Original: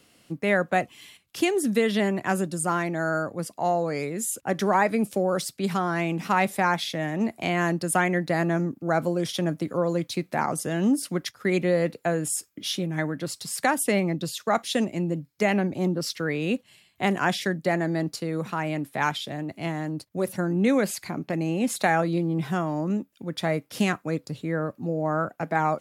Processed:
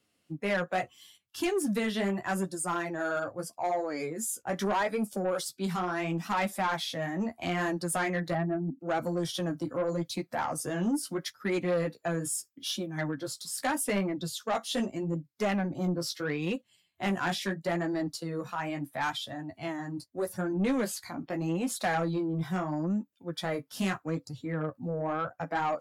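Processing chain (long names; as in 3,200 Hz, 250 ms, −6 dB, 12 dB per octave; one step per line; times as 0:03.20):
0:08.33–0:08.80: expanding power law on the bin magnitudes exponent 1.9
noise reduction from a noise print of the clip's start 12 dB
flanger 0.78 Hz, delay 8.5 ms, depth 9.4 ms, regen −17%
soft clipping −22.5 dBFS, distortion −14 dB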